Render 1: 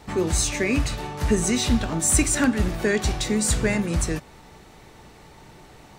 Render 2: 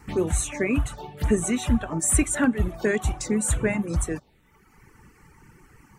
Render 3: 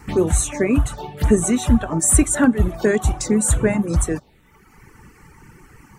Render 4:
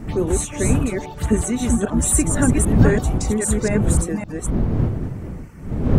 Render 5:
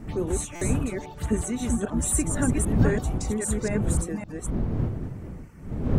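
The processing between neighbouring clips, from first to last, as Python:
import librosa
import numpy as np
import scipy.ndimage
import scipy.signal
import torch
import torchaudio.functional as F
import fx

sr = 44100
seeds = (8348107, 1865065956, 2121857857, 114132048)

y1 = fx.dereverb_blind(x, sr, rt60_s=1.2)
y1 = fx.env_phaser(y1, sr, low_hz=580.0, high_hz=4900.0, full_db=-21.5)
y2 = fx.dynamic_eq(y1, sr, hz=2400.0, q=1.4, threshold_db=-44.0, ratio=4.0, max_db=-7)
y2 = y2 * 10.0 ** (6.5 / 20.0)
y3 = fx.reverse_delay(y2, sr, ms=265, wet_db=-2)
y3 = fx.dmg_wind(y3, sr, seeds[0], corner_hz=170.0, level_db=-18.0)
y3 = y3 * 10.0 ** (-4.0 / 20.0)
y4 = fx.buffer_glitch(y3, sr, at_s=(0.55,), block=256, repeats=10)
y4 = y4 * 10.0 ** (-7.0 / 20.0)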